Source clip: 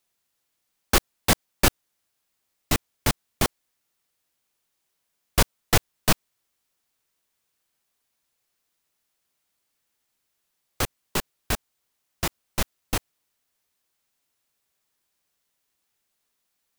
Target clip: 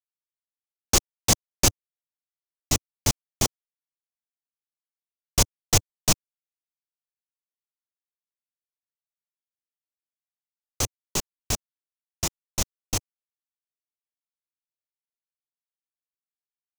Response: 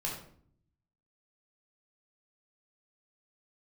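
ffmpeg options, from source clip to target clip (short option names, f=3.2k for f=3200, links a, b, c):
-af "equalizer=f=100:t=o:w=0.67:g=5,equalizer=f=1.6k:t=o:w=0.67:g=-7,equalizer=f=6.3k:t=o:w=0.67:g=12,aeval=exprs='sgn(val(0))*max(abs(val(0))-0.00422,0)':c=same,volume=-2.5dB"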